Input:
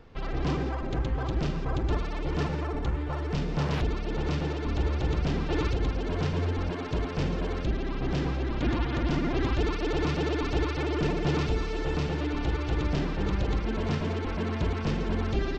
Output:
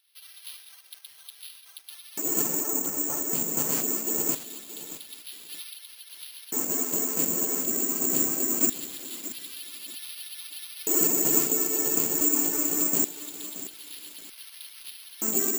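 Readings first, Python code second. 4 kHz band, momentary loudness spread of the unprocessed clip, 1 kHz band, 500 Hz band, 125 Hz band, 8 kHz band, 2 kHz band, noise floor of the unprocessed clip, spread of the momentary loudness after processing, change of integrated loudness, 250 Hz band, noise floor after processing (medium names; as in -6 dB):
0.0 dB, 3 LU, -7.5 dB, -5.0 dB, -20.0 dB, no reading, -7.0 dB, -32 dBFS, 20 LU, +6.0 dB, -4.0 dB, -51 dBFS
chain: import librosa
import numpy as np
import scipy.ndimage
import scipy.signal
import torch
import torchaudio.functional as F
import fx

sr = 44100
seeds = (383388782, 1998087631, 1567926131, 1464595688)

p1 = fx.high_shelf(x, sr, hz=5100.0, db=6.0)
p2 = fx.echo_wet_bandpass(p1, sr, ms=317, feedback_pct=75, hz=490.0, wet_db=-12)
p3 = fx.volume_shaper(p2, sr, bpm=149, per_beat=2, depth_db=-10, release_ms=100.0, shape='fast start')
p4 = p2 + (p3 * 10.0 ** (0.5 / 20.0))
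p5 = scipy.signal.sosfilt(scipy.signal.butter(4, 56.0, 'highpass', fs=sr, output='sos'), p4)
p6 = fx.low_shelf(p5, sr, hz=110.0, db=-10.5)
p7 = fx.filter_lfo_highpass(p6, sr, shape='square', hz=0.23, low_hz=250.0, high_hz=4000.0, q=2.4)
p8 = (np.kron(scipy.signal.resample_poly(p7, 1, 6), np.eye(6)[0]) * 6)[:len(p7)]
p9 = fx.echo_crushed(p8, sr, ms=626, feedback_pct=35, bits=4, wet_db=-13)
y = p9 * 10.0 ** (-10.5 / 20.0)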